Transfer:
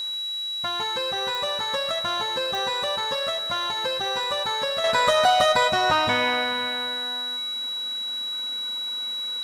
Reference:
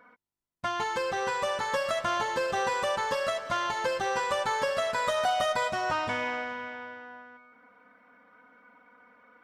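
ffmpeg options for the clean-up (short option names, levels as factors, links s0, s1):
-af "adeclick=t=4,bandreject=f=3900:w=30,afwtdn=0.0035,asetnsamples=n=441:p=0,asendcmd='4.84 volume volume -8dB',volume=1"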